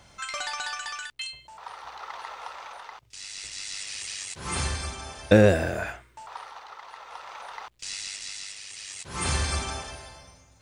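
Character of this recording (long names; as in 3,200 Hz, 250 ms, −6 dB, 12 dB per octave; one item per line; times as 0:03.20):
tremolo triangle 0.55 Hz, depth 55%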